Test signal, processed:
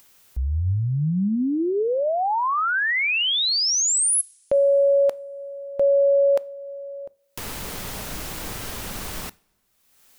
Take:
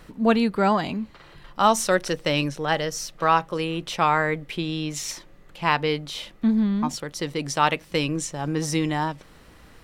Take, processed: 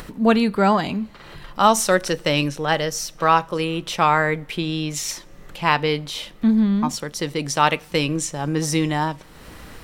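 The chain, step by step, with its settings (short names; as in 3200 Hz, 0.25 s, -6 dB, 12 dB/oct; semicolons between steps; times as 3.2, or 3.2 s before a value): high shelf 9900 Hz +5 dB; upward compressor, threshold -34 dBFS; two-slope reverb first 0.4 s, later 2.5 s, from -22 dB, DRR 19.5 dB; gain +3 dB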